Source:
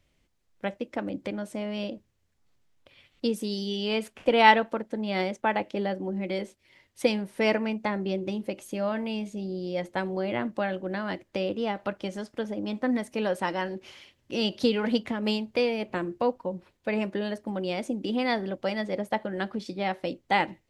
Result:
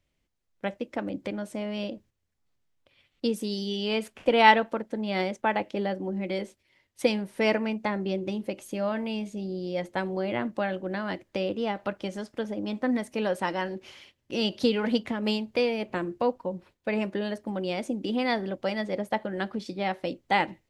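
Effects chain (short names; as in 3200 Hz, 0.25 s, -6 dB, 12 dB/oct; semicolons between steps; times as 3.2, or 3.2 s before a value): gate -54 dBFS, range -7 dB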